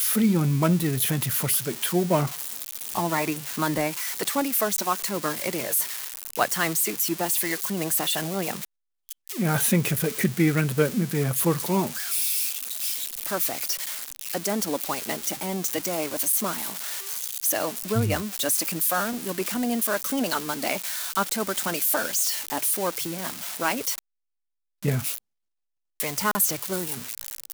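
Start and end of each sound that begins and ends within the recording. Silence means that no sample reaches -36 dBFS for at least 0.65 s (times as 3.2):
24.83–25.18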